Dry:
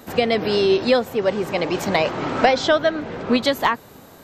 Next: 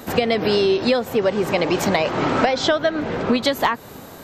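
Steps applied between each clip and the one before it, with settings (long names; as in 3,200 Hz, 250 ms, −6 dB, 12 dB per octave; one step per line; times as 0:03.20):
downward compressor, threshold −21 dBFS, peak gain reduction 10.5 dB
level +6 dB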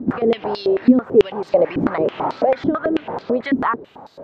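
spectral tilt −4 dB per octave
boost into a limiter +5.5 dB
band-pass on a step sequencer 9.1 Hz 260–4,400 Hz
level +3 dB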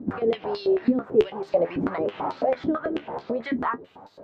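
flanger 0.48 Hz, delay 9.7 ms, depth 4.9 ms, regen +44%
level −3 dB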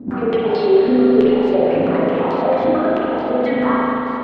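in parallel at +2.5 dB: brickwall limiter −19 dBFS, peak gain reduction 11.5 dB
on the sum: spring reverb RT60 3.7 s, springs 36/44 ms, chirp 30 ms, DRR −7 dB
level −4.5 dB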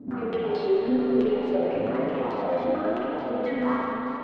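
in parallel at −6 dB: soft clipping −18.5 dBFS, distortion −8 dB
on the sum: flanger 0.95 Hz, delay 6.5 ms, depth 5.8 ms, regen +40%
level −8 dB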